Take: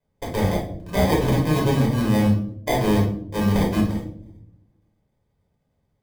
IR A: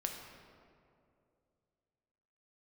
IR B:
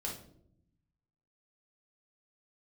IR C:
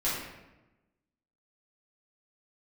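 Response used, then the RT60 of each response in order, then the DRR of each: B; 2.5, 0.70, 1.0 s; 2.0, -2.5, -10.0 dB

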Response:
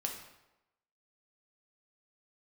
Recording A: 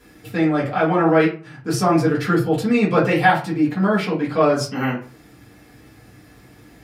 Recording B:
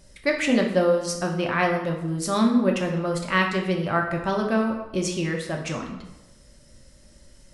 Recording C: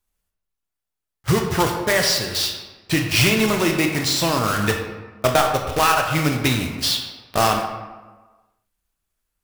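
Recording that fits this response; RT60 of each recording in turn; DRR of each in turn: B; 0.40, 0.95, 1.3 s; -8.5, 1.0, 2.5 dB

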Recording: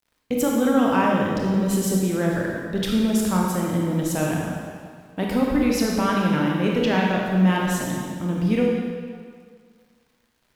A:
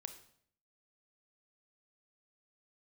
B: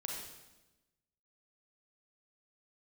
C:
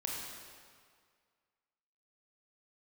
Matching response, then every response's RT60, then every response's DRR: C; 0.60, 1.1, 1.9 s; 8.0, -1.5, -2.5 dB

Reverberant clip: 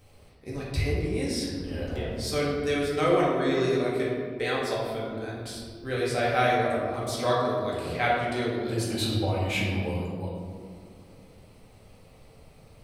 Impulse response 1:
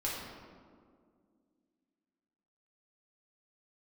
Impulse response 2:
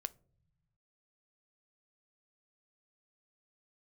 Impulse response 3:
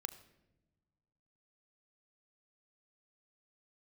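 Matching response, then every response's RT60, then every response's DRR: 1; 2.1 s, not exponential, not exponential; -6.5, 13.5, 10.5 dB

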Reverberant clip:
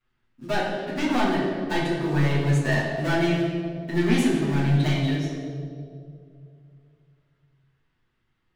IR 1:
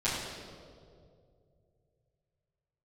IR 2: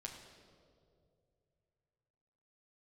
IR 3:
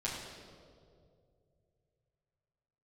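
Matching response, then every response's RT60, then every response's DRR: 1; 2.4, 2.5, 2.4 s; -12.5, 0.5, -6.5 dB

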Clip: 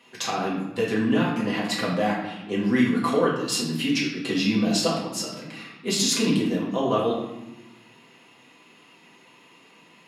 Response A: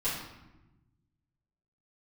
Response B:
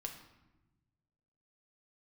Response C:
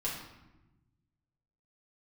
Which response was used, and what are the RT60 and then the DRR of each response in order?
C; 1.0, 1.1, 1.0 s; -12.0, 2.5, -6.0 dB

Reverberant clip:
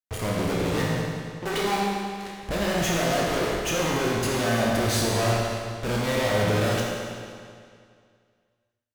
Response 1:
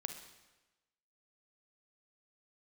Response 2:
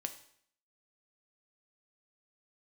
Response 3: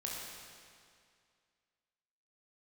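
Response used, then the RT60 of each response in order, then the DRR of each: 3; 1.1, 0.60, 2.2 s; 6.0, 6.5, -3.5 dB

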